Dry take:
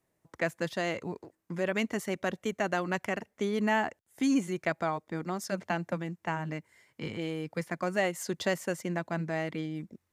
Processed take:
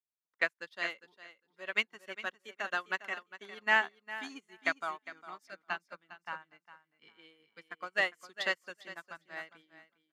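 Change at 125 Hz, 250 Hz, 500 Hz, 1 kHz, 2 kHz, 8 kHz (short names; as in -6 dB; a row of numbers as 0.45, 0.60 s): under -25 dB, -20.5 dB, -11.0 dB, -4.5 dB, +2.0 dB, -13.5 dB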